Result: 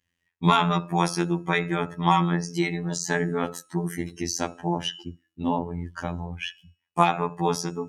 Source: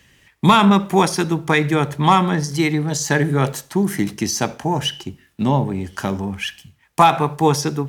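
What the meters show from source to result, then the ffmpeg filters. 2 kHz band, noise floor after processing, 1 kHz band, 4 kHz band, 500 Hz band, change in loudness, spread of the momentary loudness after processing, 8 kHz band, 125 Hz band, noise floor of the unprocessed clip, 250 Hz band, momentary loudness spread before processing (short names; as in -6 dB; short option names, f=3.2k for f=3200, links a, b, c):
-7.0 dB, -80 dBFS, -7.0 dB, -7.5 dB, -7.5 dB, -7.5 dB, 11 LU, -7.5 dB, -8.0 dB, -57 dBFS, -8.5 dB, 11 LU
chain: -af "afftfilt=real='hypot(re,im)*cos(PI*b)':imag='0':win_size=2048:overlap=0.75,afftdn=nr=19:nf=-39,bandreject=f=323.9:t=h:w=4,bandreject=f=647.8:t=h:w=4,bandreject=f=971.7:t=h:w=4,bandreject=f=1.2956k:t=h:w=4,bandreject=f=1.6195k:t=h:w=4,bandreject=f=1.9434k:t=h:w=4,bandreject=f=2.2673k:t=h:w=4,bandreject=f=2.5912k:t=h:w=4,bandreject=f=2.9151k:t=h:w=4,bandreject=f=3.239k:t=h:w=4,bandreject=f=3.5629k:t=h:w=4,bandreject=f=3.8868k:t=h:w=4,bandreject=f=4.2107k:t=h:w=4,bandreject=f=4.5346k:t=h:w=4,bandreject=f=4.8585k:t=h:w=4,bandreject=f=5.1824k:t=h:w=4,bandreject=f=5.5063k:t=h:w=4,bandreject=f=5.8302k:t=h:w=4,bandreject=f=6.1541k:t=h:w=4,bandreject=f=6.478k:t=h:w=4,bandreject=f=6.8019k:t=h:w=4,bandreject=f=7.1258k:t=h:w=4,bandreject=f=7.4497k:t=h:w=4,bandreject=f=7.7736k:t=h:w=4,bandreject=f=8.0975k:t=h:w=4,bandreject=f=8.4214k:t=h:w=4,bandreject=f=8.7453k:t=h:w=4,bandreject=f=9.0692k:t=h:w=4,bandreject=f=9.3931k:t=h:w=4,bandreject=f=9.717k:t=h:w=4,volume=-3.5dB"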